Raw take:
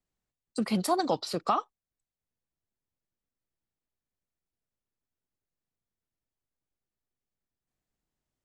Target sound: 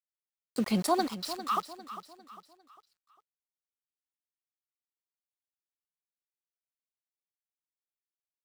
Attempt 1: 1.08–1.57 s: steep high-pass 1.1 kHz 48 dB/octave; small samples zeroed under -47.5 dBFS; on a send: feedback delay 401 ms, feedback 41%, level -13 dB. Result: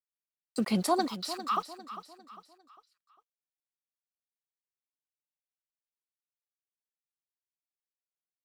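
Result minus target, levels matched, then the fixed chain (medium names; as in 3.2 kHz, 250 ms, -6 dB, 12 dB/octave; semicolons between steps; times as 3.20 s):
small samples zeroed: distortion -11 dB
1.08–1.57 s: steep high-pass 1.1 kHz 48 dB/octave; small samples zeroed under -38.5 dBFS; on a send: feedback delay 401 ms, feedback 41%, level -13 dB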